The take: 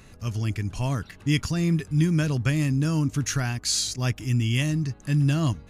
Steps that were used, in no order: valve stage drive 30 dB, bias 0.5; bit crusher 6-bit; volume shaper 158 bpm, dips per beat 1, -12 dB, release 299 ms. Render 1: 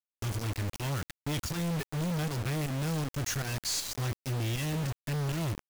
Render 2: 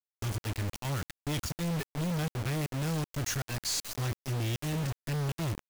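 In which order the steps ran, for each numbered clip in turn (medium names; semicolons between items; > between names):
volume shaper > valve stage > bit crusher; valve stage > volume shaper > bit crusher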